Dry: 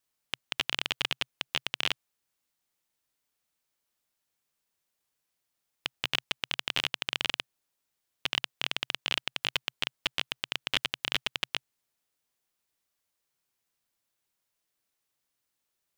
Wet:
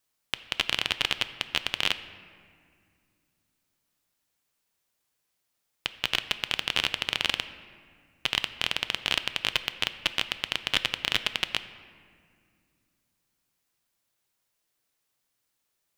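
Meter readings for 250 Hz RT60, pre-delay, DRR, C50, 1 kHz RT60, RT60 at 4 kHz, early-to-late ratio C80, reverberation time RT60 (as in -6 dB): 3.3 s, 6 ms, 11.5 dB, 13.0 dB, 2.0 s, 1.3 s, 14.0 dB, 2.2 s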